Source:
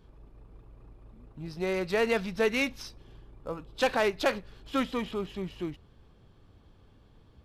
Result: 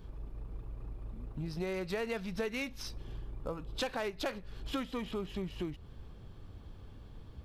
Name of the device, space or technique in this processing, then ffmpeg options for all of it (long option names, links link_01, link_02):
ASMR close-microphone chain: -af "lowshelf=frequency=120:gain=7,acompressor=threshold=-39dB:ratio=4,highshelf=frequency=12000:gain=4.5,volume=3.5dB"